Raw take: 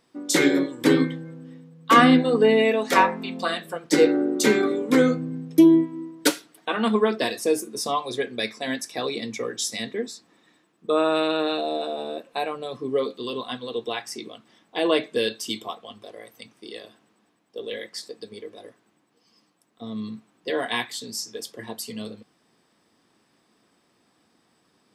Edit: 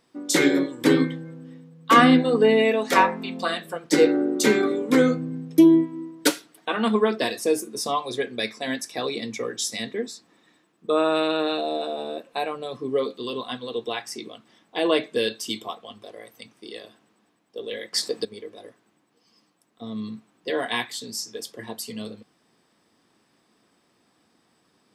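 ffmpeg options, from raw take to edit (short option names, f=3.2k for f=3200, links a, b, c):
-filter_complex "[0:a]asplit=3[a][b][c];[a]atrim=end=17.932[d];[b]atrim=start=17.928:end=18.252,asetpts=PTS-STARTPTS,volume=10.5dB[e];[c]atrim=start=18.248[f];[d][e]acrossfade=d=0.004:c1=hsin:c2=hsin[g];[g][f]acrossfade=d=0.004:c1=hsin:c2=hsin"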